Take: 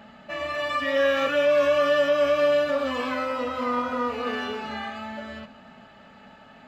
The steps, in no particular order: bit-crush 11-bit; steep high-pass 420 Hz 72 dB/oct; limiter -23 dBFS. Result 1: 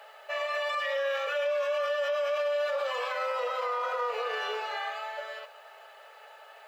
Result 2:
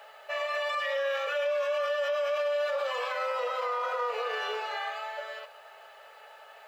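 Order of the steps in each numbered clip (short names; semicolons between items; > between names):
bit-crush > steep high-pass > limiter; steep high-pass > bit-crush > limiter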